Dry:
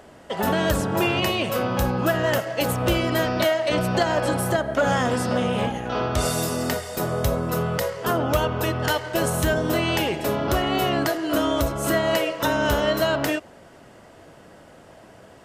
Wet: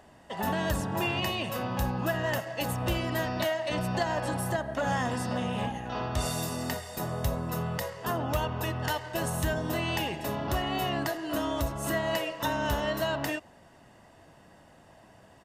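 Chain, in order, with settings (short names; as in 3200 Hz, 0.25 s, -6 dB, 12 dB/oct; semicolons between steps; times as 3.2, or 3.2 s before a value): comb 1.1 ms, depth 39%; gain -8 dB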